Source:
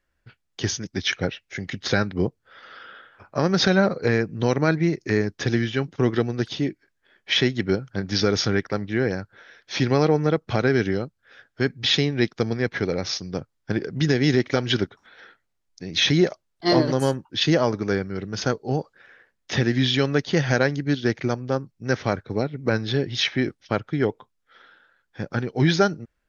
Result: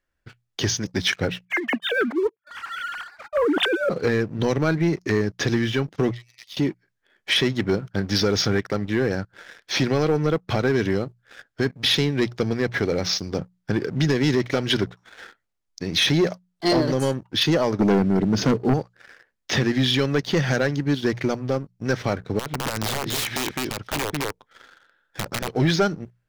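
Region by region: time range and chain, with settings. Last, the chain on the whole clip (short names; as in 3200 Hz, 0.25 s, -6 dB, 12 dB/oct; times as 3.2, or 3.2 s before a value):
1.45–3.9 sine-wave speech + HPF 260 Hz + negative-ratio compressor -22 dBFS, ratio -0.5
6.11–6.57 brick-wall FIR high-pass 1800 Hz + compressor 2:1, threshold -53 dBFS
17.79–18.74 bell 230 Hz +14 dB 2.4 oct + overloaded stage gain 12 dB
22.39–25.49 echo 0.206 s -9 dB + compressor 10:1, threshold -26 dBFS + wrapped overs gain 25 dB
whole clip: notches 60/120/180 Hz; compressor 1.5:1, threshold -33 dBFS; sample leveller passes 2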